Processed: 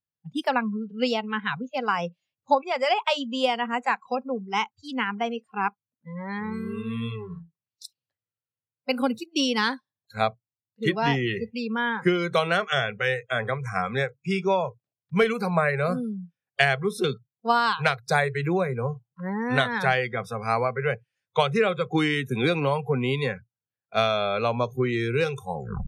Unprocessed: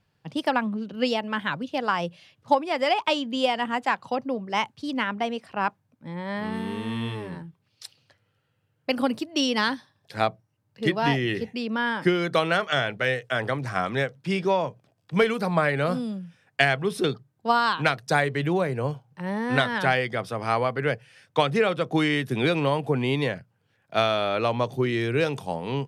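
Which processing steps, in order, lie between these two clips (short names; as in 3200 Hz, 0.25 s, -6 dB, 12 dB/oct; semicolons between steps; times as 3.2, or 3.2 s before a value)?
tape stop at the end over 0.33 s; spectral noise reduction 29 dB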